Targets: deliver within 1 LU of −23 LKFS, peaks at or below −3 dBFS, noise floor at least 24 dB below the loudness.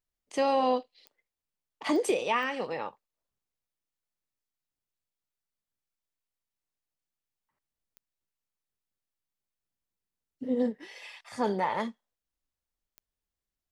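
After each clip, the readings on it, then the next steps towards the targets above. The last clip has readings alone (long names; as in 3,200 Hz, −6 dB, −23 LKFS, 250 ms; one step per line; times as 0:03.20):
number of clicks 5; integrated loudness −30.0 LKFS; sample peak −16.0 dBFS; target loudness −23.0 LKFS
→ click removal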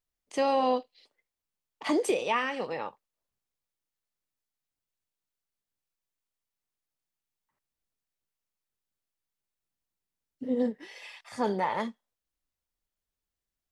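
number of clicks 0; integrated loudness −30.0 LKFS; sample peak −16.0 dBFS; target loudness −23.0 LKFS
→ level +7 dB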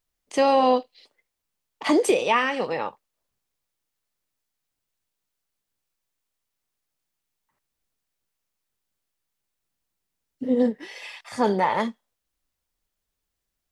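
integrated loudness −23.0 LKFS; sample peak −9.0 dBFS; background noise floor −82 dBFS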